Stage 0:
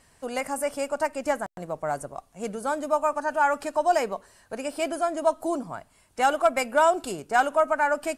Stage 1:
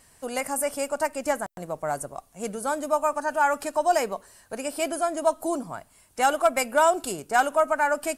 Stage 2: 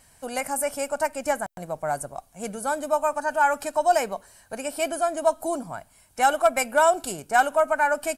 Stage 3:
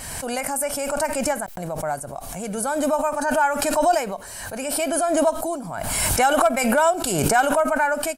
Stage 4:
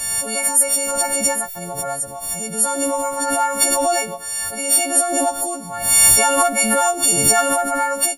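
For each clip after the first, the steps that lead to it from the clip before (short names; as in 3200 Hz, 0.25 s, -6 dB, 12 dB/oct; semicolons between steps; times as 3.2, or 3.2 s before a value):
high shelf 8500 Hz +12 dB
comb 1.3 ms, depth 32%
backwards sustainer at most 30 dB/s
frequency quantiser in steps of 4 st; gain -1 dB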